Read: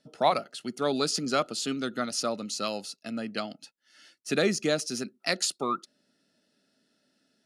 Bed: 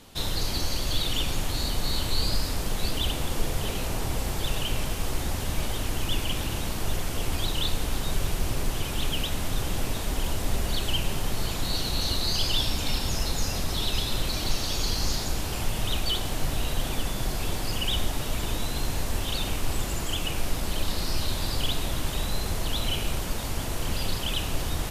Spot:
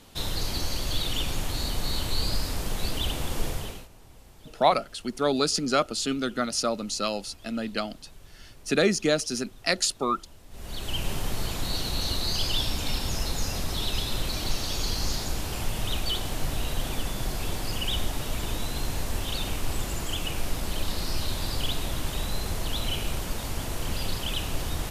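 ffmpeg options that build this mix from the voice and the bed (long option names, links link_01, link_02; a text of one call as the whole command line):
ffmpeg -i stem1.wav -i stem2.wav -filter_complex "[0:a]adelay=4400,volume=3dB[link_01];[1:a]volume=20dB,afade=type=out:start_time=3.47:duration=0.41:silence=0.0841395,afade=type=in:start_time=10.5:duration=0.59:silence=0.0841395[link_02];[link_01][link_02]amix=inputs=2:normalize=0" out.wav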